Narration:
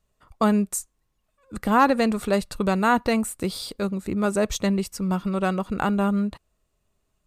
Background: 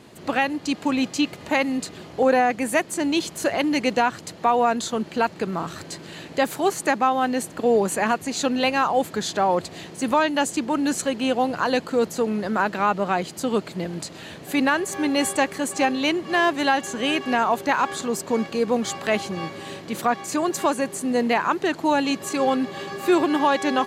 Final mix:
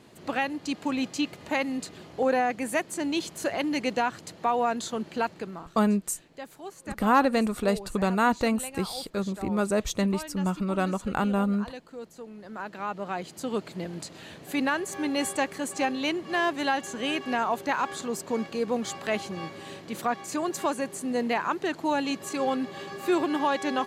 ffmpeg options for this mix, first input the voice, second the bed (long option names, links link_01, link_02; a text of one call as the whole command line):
ffmpeg -i stem1.wav -i stem2.wav -filter_complex "[0:a]adelay=5350,volume=-3dB[link_01];[1:a]volume=7.5dB,afade=type=out:start_time=5.23:duration=0.49:silence=0.211349,afade=type=in:start_time=12.35:duration=1.38:silence=0.211349[link_02];[link_01][link_02]amix=inputs=2:normalize=0" out.wav